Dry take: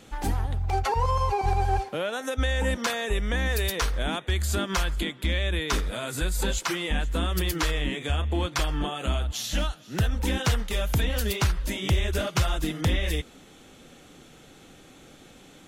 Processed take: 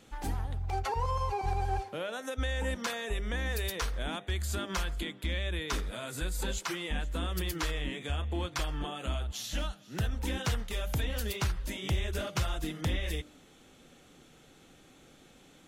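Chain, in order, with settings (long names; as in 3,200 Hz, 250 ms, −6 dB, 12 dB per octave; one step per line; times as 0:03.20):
hum removal 99.45 Hz, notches 8
level −7 dB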